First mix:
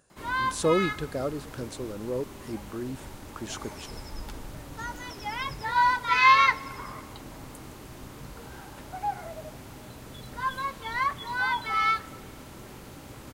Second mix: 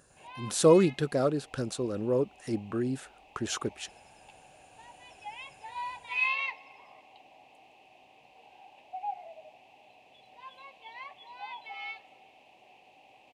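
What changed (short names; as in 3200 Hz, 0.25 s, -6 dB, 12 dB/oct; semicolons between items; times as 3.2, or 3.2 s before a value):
speech +4.0 dB; background: add double band-pass 1400 Hz, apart 1.8 oct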